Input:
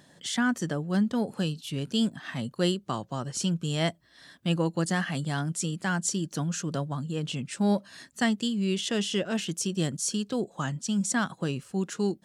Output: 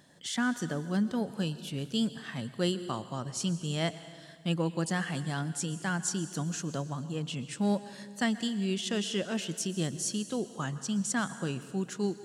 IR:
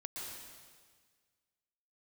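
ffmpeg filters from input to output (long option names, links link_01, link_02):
-filter_complex "[0:a]asplit=2[link_01][link_02];[link_02]highshelf=frequency=8200:gain=6.5[link_03];[1:a]atrim=start_sample=2205[link_04];[link_03][link_04]afir=irnorm=-1:irlink=0,volume=-9.5dB[link_05];[link_01][link_05]amix=inputs=2:normalize=0,volume=-5dB"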